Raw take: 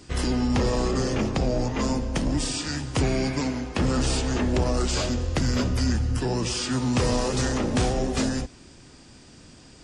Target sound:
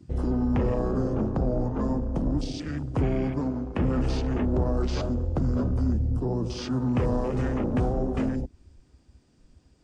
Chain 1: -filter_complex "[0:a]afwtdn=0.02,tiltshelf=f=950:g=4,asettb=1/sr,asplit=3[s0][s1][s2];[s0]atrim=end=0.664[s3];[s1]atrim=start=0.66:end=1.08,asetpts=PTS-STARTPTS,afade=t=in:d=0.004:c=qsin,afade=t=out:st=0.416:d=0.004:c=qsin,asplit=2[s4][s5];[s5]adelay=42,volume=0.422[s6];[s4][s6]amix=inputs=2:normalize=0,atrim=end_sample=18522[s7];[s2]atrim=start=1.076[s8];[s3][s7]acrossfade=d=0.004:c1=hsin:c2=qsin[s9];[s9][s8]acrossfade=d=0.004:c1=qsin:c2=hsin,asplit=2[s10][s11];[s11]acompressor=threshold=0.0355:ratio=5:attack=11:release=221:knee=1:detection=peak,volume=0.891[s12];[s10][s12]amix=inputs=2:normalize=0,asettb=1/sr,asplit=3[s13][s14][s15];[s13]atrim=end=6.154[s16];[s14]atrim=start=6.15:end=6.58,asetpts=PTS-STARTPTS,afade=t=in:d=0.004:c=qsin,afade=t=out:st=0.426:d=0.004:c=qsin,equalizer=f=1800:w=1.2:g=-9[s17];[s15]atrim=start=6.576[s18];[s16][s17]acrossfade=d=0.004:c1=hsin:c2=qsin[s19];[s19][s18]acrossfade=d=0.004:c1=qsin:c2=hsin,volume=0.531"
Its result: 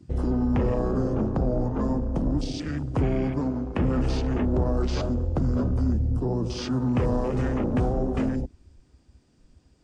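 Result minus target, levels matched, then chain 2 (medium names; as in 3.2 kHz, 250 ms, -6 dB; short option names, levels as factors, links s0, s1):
compression: peak gain reduction -7 dB
-filter_complex "[0:a]afwtdn=0.02,tiltshelf=f=950:g=4,asettb=1/sr,asplit=3[s0][s1][s2];[s0]atrim=end=0.664[s3];[s1]atrim=start=0.66:end=1.08,asetpts=PTS-STARTPTS,afade=t=in:d=0.004:c=qsin,afade=t=out:st=0.416:d=0.004:c=qsin,asplit=2[s4][s5];[s5]adelay=42,volume=0.422[s6];[s4][s6]amix=inputs=2:normalize=0,atrim=end_sample=18522[s7];[s2]atrim=start=1.076[s8];[s3][s7]acrossfade=d=0.004:c1=hsin:c2=qsin[s9];[s9][s8]acrossfade=d=0.004:c1=qsin:c2=hsin,asplit=2[s10][s11];[s11]acompressor=threshold=0.0126:ratio=5:attack=11:release=221:knee=1:detection=peak,volume=0.891[s12];[s10][s12]amix=inputs=2:normalize=0,asettb=1/sr,asplit=3[s13][s14][s15];[s13]atrim=end=6.154[s16];[s14]atrim=start=6.15:end=6.58,asetpts=PTS-STARTPTS,afade=t=in:d=0.004:c=qsin,afade=t=out:st=0.426:d=0.004:c=qsin,equalizer=f=1800:w=1.2:g=-9[s17];[s15]atrim=start=6.576[s18];[s16][s17]acrossfade=d=0.004:c1=hsin:c2=qsin[s19];[s19][s18]acrossfade=d=0.004:c1=qsin:c2=hsin,volume=0.531"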